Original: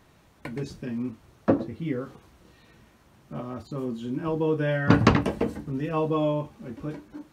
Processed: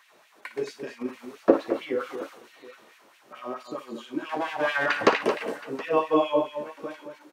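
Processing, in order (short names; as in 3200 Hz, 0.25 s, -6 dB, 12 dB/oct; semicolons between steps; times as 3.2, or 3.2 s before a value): 4.29–4.86 minimum comb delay 1.2 ms; LFO high-pass sine 4.5 Hz 360–2600 Hz; harmonic-percussive split harmonic +5 dB; 1.01–3.41 transient shaper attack +1 dB, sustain +7 dB; tapped delay 57/222/721 ms -13/-9.5/-19.5 dB; gain -1 dB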